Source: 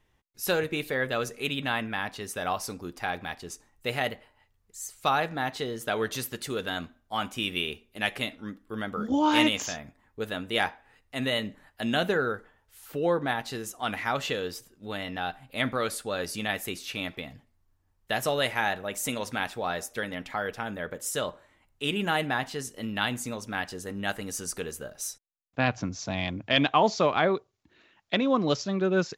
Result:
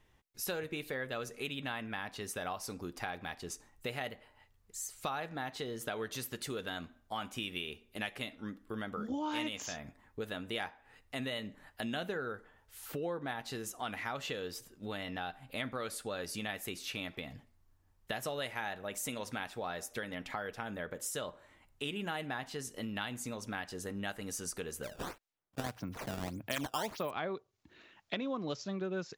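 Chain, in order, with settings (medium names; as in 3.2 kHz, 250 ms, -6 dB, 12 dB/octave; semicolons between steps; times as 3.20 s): compression 3:1, threshold -40 dBFS, peak gain reduction 17 dB; 24.83–27.11 s: decimation with a swept rate 12×, swing 160% 1.7 Hz; trim +1 dB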